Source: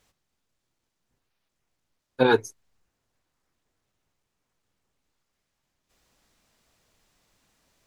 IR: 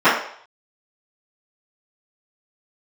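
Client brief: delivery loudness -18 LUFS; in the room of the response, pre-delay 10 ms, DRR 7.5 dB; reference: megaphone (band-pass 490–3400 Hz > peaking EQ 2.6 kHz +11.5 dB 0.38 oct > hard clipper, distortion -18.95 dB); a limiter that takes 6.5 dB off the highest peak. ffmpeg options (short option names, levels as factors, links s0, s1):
-filter_complex "[0:a]alimiter=limit=0.251:level=0:latency=1,asplit=2[s0][s1];[1:a]atrim=start_sample=2205,adelay=10[s2];[s1][s2]afir=irnorm=-1:irlink=0,volume=0.0188[s3];[s0][s3]amix=inputs=2:normalize=0,highpass=490,lowpass=3400,equalizer=f=2600:t=o:w=0.38:g=11.5,asoftclip=type=hard:threshold=0.133,volume=3.35"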